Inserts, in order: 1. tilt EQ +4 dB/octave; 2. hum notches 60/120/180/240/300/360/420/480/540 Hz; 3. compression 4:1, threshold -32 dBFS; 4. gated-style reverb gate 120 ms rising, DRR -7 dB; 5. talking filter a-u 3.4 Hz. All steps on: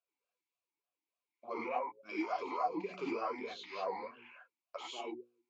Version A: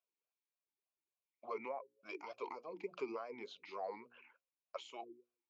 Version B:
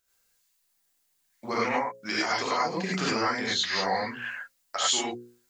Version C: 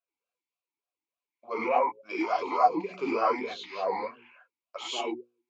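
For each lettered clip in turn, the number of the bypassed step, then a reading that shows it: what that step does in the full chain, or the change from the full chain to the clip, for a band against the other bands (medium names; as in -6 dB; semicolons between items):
4, momentary loudness spread change -3 LU; 5, 125 Hz band +12.5 dB; 3, mean gain reduction 7.5 dB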